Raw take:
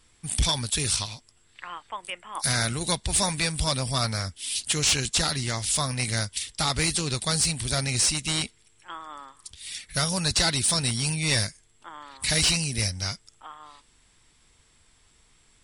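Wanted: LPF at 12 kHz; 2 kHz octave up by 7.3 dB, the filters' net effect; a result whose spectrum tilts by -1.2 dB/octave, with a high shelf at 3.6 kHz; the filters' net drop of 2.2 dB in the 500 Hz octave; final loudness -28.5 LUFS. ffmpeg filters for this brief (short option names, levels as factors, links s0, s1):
-af "lowpass=12000,equalizer=f=500:t=o:g=-3.5,equalizer=f=2000:t=o:g=7.5,highshelf=f=3600:g=5.5,volume=0.398"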